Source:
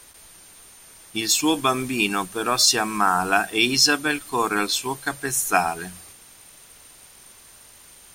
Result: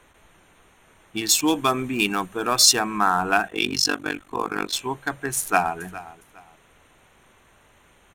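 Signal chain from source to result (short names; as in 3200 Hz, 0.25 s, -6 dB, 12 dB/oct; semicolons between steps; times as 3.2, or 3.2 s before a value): Wiener smoothing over 9 samples; 1.22–2.79 high shelf 8400 Hz -> 5800 Hz +6 dB; 3.48–4.73 AM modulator 48 Hz, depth 90%; 5.39–5.79 echo throw 0.41 s, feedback 25%, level -17 dB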